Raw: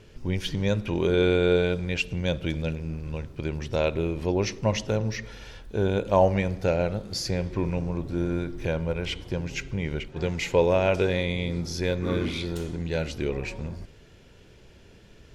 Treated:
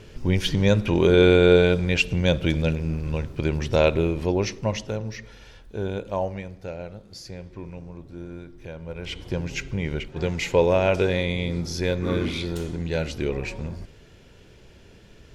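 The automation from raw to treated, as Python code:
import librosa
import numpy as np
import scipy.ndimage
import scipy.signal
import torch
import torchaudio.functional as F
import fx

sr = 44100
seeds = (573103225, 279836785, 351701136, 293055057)

y = fx.gain(x, sr, db=fx.line((3.88, 6.0), (5.03, -4.0), (5.92, -4.0), (6.52, -10.5), (8.76, -10.5), (9.28, 2.0)))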